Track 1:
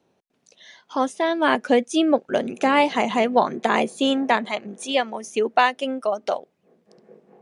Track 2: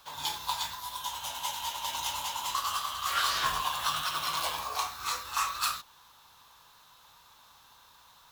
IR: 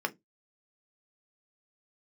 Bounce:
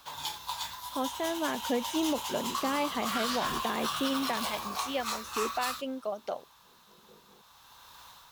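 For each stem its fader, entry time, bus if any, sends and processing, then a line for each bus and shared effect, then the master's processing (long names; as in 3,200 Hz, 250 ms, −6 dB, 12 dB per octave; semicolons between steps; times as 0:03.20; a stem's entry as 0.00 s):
−12.0 dB, 0.00 s, no send, parametric band 64 Hz +11 dB 2.9 octaves
+1.5 dB, 0.00 s, no send, automatic gain control gain up to 6.5 dB; automatic ducking −10 dB, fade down 0.40 s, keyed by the first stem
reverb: not used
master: brickwall limiter −20 dBFS, peak gain reduction 5.5 dB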